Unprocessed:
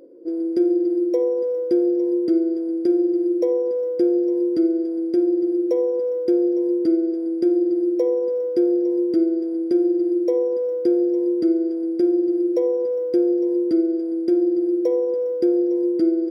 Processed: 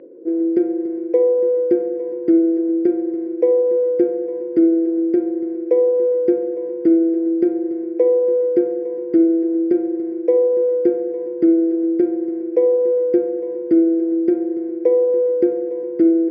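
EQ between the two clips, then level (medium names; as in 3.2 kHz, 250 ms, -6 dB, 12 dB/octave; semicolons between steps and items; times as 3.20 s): cabinet simulation 120–2300 Hz, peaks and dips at 290 Hz -5 dB, 600 Hz -6 dB, 880 Hz -8 dB, 1.3 kHz -6 dB; hum notches 50/100/150/200/250/300/350 Hz; +8.5 dB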